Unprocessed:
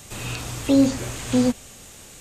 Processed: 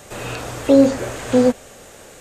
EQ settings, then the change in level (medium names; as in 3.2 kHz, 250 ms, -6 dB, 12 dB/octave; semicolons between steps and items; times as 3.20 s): peaking EQ 540 Hz +12.5 dB 1.6 oct; peaking EQ 1.6 kHz +6.5 dB 0.88 oct; -2.0 dB